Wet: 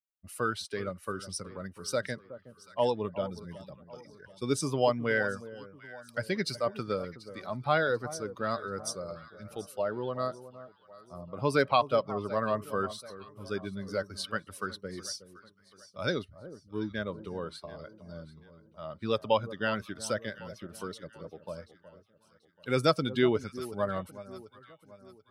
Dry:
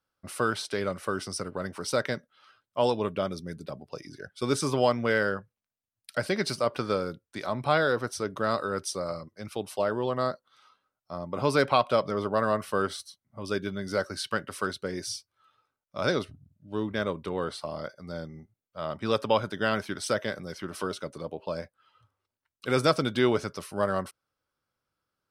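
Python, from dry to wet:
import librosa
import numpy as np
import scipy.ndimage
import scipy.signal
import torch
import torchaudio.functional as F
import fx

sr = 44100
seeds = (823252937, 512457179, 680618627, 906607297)

y = fx.bin_expand(x, sr, power=1.5)
y = fx.echo_alternate(y, sr, ms=368, hz=1100.0, feedback_pct=62, wet_db=-14.0)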